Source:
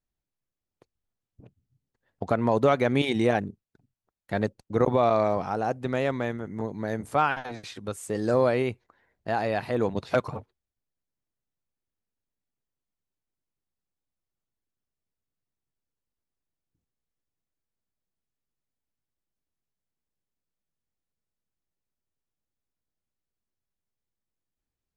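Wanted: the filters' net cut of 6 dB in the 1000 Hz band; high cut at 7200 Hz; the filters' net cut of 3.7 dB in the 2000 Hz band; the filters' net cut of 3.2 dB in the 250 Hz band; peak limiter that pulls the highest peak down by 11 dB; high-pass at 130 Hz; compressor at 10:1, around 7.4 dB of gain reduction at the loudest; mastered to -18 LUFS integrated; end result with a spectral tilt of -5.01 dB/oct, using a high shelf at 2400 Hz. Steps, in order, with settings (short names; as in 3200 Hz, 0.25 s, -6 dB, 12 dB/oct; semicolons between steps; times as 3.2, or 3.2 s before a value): HPF 130 Hz; LPF 7200 Hz; bell 250 Hz -3 dB; bell 1000 Hz -9 dB; bell 2000 Hz -4.5 dB; high shelf 2400 Hz +6 dB; compressor 10:1, threshold -27 dBFS; gain +21 dB; limiter -6 dBFS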